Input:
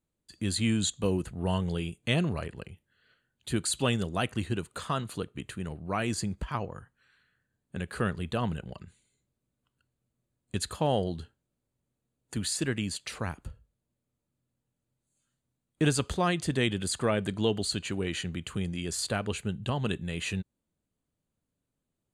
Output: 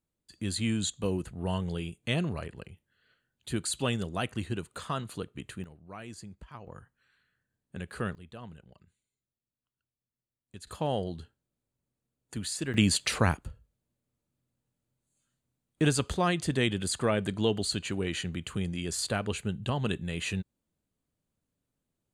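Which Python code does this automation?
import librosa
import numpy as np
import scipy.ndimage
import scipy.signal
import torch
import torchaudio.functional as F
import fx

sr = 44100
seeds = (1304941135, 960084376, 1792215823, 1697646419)

y = fx.gain(x, sr, db=fx.steps((0.0, -2.5), (5.64, -13.5), (6.67, -4.0), (8.15, -15.0), (10.67, -3.5), (12.74, 9.0), (13.37, 0.0)))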